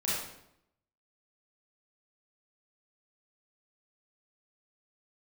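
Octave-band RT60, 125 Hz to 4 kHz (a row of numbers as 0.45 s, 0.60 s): 0.90 s, 0.90 s, 0.80 s, 0.75 s, 0.65 s, 0.60 s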